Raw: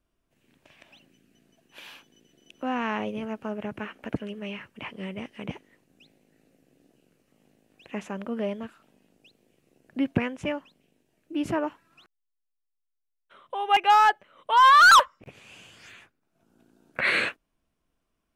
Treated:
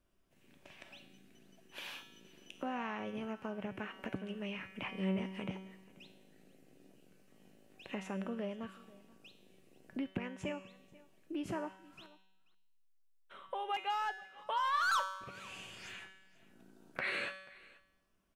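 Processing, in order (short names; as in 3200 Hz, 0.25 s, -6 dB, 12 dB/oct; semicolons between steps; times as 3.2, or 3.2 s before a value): compressor 3:1, threshold -39 dBFS, peak gain reduction 18.5 dB; resonator 190 Hz, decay 0.92 s, mix 80%; echo 0.485 s -22 dB; gain +12 dB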